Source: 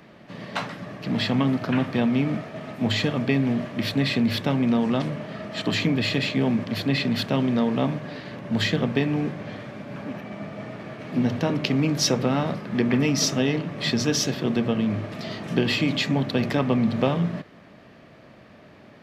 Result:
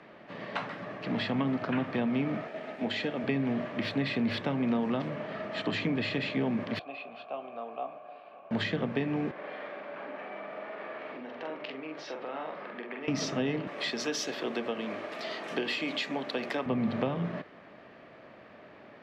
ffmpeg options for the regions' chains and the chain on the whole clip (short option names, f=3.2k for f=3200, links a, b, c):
-filter_complex "[0:a]asettb=1/sr,asplit=3[a][b][c];[a]atrim=end=2.474[d];[b]atrim=start=2.47:end=3.24,asetpts=PTS-STARTPTS,afade=t=in:d=0.004:c=qsin,afade=t=out:st=0.766:d=0.004:c=qsin,highpass=210,aeval=exprs='sgn(val(0))*max(abs(val(0))-0.00168,0)':c=same,equalizer=f=1.1k:w=4.8:g=-9[e];[c]atrim=start=3.236[f];[d][e]acrossfade=d=0.004:c1=hsin:c2=qsin[g];[g][f]acrossfade=d=0.004:c1=qsin:c2=hsin,asettb=1/sr,asplit=3[h][i][j];[h]atrim=end=6.794[k];[i]atrim=start=6.79:end=8.51,asetpts=PTS-STARTPTS,afade=t=in:d=0.004:c=qsin,afade=t=out:st=1.716:d=0.004:c=qsin,asplit=3[l][m][n];[l]bandpass=f=730:t=q:w=8,volume=0dB[o];[m]bandpass=f=1.09k:t=q:w=8,volume=-6dB[p];[n]bandpass=f=2.44k:t=q:w=8,volume=-9dB[q];[o][p][q]amix=inputs=3:normalize=0,asplit=2[r][s];[s]adelay=18,volume=-11dB[t];[r][t]amix=inputs=2:normalize=0,atrim=end_sample=75852[u];[j]atrim=start=8.506[v];[k][u]acrossfade=d=0.004:c1=hsin:c2=qsin[w];[w][v]acrossfade=d=0.004:c1=qsin:c2=hsin,asettb=1/sr,asplit=3[x][y][z];[x]atrim=end=9.314[aa];[y]atrim=start=9.31:end=13.08,asetpts=PTS-STARTPTS,afade=t=in:d=0.004:c=qsin,afade=t=out:st=3.766:d=0.004:c=qsin,acompressor=threshold=-33dB:ratio=3:attack=3.2:release=140:knee=1:detection=peak,highpass=400,lowpass=3.7k,asplit=2[ab][ac];[ac]adelay=45,volume=-3.5dB[ad];[ab][ad]amix=inputs=2:normalize=0,atrim=end_sample=166257[ae];[z]atrim=start=13.076[af];[aa][ae]acrossfade=d=0.004:c1=hsin:c2=qsin[ag];[ag][af]acrossfade=d=0.004:c1=qsin:c2=hsin,asettb=1/sr,asplit=3[ah][ai][aj];[ah]atrim=end=13.674[ak];[ai]atrim=start=13.67:end=16.66,asetpts=PTS-STARTPTS,afade=t=in:d=0.004:c=qsin,afade=t=out:st=2.986:d=0.004:c=qsin,highpass=330,aemphasis=mode=production:type=50fm[al];[aj]atrim=start=16.656[am];[ak][al]acrossfade=d=0.004:c1=hsin:c2=qsin[an];[an][am]acrossfade=d=0.004:c1=qsin:c2=hsin,bass=f=250:g=-11,treble=f=4k:g=-13,acrossover=split=260[ao][ap];[ap]acompressor=threshold=-32dB:ratio=3[aq];[ao][aq]amix=inputs=2:normalize=0,lowpass=8.5k"